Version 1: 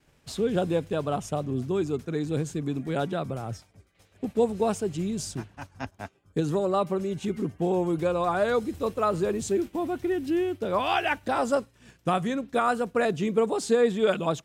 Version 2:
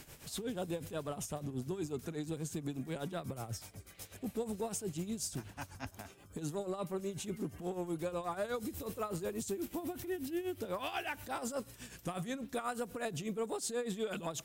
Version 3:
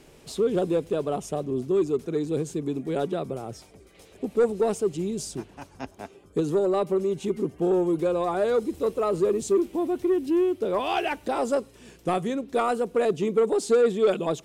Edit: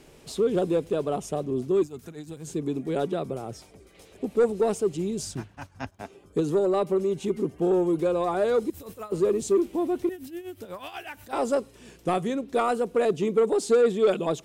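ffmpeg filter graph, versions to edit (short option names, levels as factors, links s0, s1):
-filter_complex "[1:a]asplit=3[s0][s1][s2];[2:a]asplit=5[s3][s4][s5][s6][s7];[s3]atrim=end=1.832[s8];[s0]atrim=start=1.828:end=2.472[s9];[s4]atrim=start=2.468:end=5.222[s10];[0:a]atrim=start=5.218:end=6.022[s11];[s5]atrim=start=6.018:end=8.702[s12];[s1]atrim=start=8.698:end=9.122[s13];[s6]atrim=start=9.118:end=10.092[s14];[s2]atrim=start=10.088:end=11.332[s15];[s7]atrim=start=11.328[s16];[s8][s9]acrossfade=d=0.004:c1=hsin:c2=hsin[s17];[s17][s10]acrossfade=d=0.004:c1=hsin:c2=hsin[s18];[s18][s11]acrossfade=d=0.004:c1=hsin:c2=hsin[s19];[s19][s12]acrossfade=d=0.004:c1=hsin:c2=hsin[s20];[s20][s13]acrossfade=d=0.004:c1=hsin:c2=hsin[s21];[s21][s14]acrossfade=d=0.004:c1=hsin:c2=hsin[s22];[s22][s15]acrossfade=d=0.004:c1=hsin:c2=hsin[s23];[s23][s16]acrossfade=d=0.004:c1=hsin:c2=hsin"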